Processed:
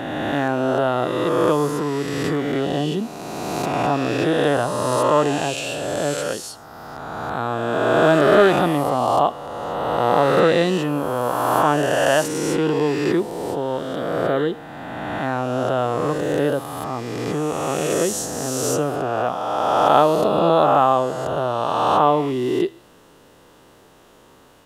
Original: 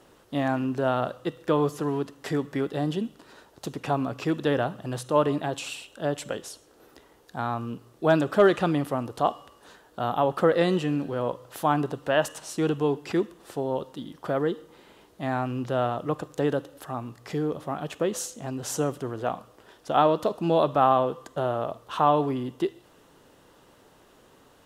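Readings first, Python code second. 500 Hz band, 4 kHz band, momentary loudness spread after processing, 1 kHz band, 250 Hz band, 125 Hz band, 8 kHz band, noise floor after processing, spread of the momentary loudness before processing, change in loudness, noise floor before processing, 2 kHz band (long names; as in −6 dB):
+7.5 dB, +9.0 dB, 11 LU, +8.0 dB, +5.5 dB, +5.0 dB, +10.0 dB, −50 dBFS, 13 LU, +7.0 dB, −57 dBFS, +9.0 dB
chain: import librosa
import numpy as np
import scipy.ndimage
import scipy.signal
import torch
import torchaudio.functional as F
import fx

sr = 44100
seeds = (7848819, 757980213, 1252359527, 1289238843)

y = fx.spec_swells(x, sr, rise_s=2.53)
y = y * librosa.db_to_amplitude(2.5)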